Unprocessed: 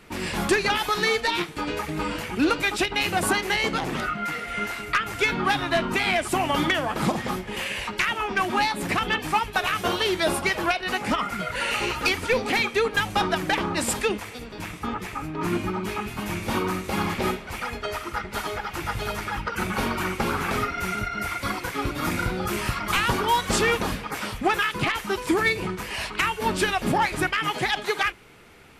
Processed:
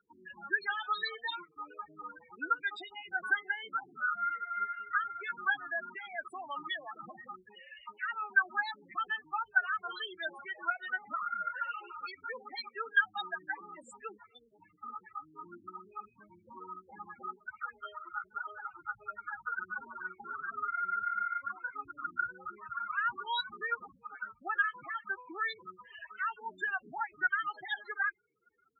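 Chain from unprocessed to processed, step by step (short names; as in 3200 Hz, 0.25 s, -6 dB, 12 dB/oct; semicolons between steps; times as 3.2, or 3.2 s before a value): loudest bins only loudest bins 8; double band-pass 2400 Hz, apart 1.3 oct; gain +2.5 dB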